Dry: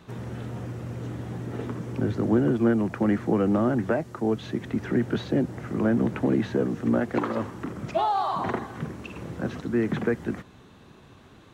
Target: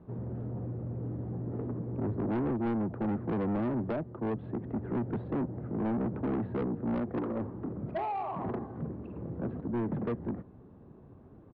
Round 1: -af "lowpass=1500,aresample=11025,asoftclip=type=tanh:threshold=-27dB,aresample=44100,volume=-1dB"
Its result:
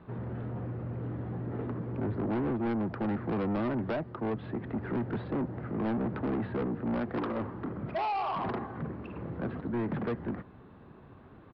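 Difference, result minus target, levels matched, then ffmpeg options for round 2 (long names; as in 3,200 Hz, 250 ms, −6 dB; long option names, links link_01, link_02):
2,000 Hz band +5.5 dB
-af "lowpass=620,aresample=11025,asoftclip=type=tanh:threshold=-27dB,aresample=44100,volume=-1dB"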